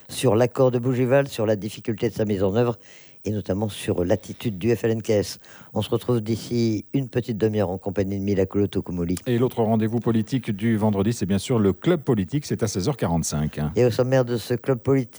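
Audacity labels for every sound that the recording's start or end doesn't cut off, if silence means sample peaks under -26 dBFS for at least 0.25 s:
3.260000	5.330000	sound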